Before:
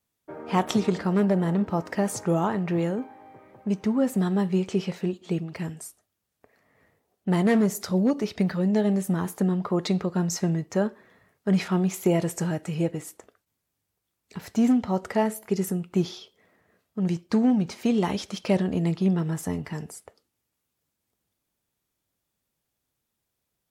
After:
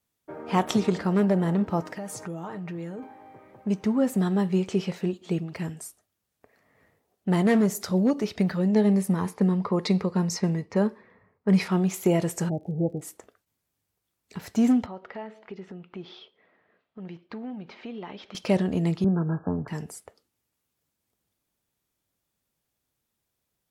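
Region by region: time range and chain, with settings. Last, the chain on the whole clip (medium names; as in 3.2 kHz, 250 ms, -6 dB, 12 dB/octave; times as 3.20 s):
1.81–3.03 s: comb 6.5 ms, depth 44% + compression 4:1, threshold -34 dBFS
8.75–11.70 s: level-controlled noise filter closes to 1.2 kHz, open at -21 dBFS + rippled EQ curve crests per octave 0.89, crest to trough 6 dB
12.48–13.01 s: Chebyshev low-pass 840 Hz, order 8 + crackle 100 per s -53 dBFS
14.86–18.35 s: low-pass 3.6 kHz 24 dB/octave + peaking EQ 67 Hz -14 dB 2.7 oct + compression 2:1, threshold -43 dBFS
19.04–19.68 s: brick-wall FIR low-pass 1.7 kHz + three bands compressed up and down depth 40%
whole clip: none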